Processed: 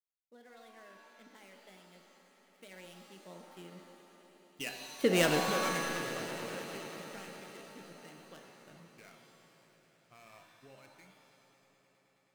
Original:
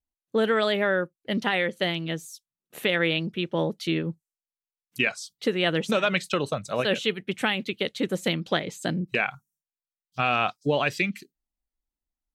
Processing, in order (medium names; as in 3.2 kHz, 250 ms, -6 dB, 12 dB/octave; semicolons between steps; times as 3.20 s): dead-time distortion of 0.1 ms; Doppler pass-by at 5.14 s, 27 m/s, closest 3 m; on a send: echo with a slow build-up 106 ms, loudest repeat 5, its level -18 dB; on the sum: pitch-shifted reverb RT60 1.4 s, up +7 st, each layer -2 dB, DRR 5 dB; trim -1.5 dB